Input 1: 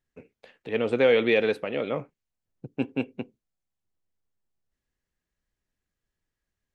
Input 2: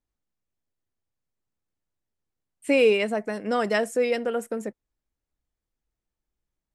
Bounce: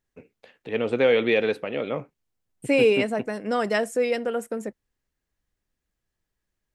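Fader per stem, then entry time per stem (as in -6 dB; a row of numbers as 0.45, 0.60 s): +0.5, 0.0 dB; 0.00, 0.00 s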